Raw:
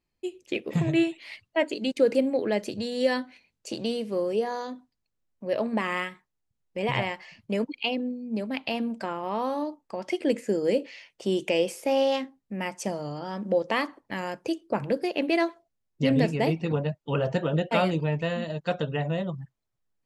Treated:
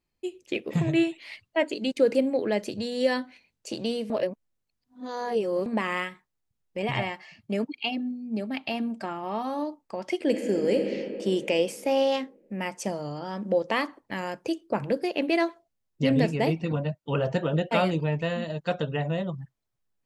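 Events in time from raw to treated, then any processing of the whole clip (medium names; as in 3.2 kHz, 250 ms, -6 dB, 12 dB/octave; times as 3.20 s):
4.10–5.66 s: reverse
6.82–9.59 s: comb of notches 500 Hz
10.22–10.87 s: reverb throw, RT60 3 s, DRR 3.5 dB
16.63–17.06 s: comb of notches 420 Hz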